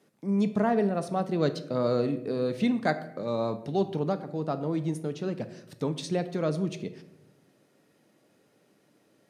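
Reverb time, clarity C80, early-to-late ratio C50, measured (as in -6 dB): 0.85 s, 15.5 dB, 13.0 dB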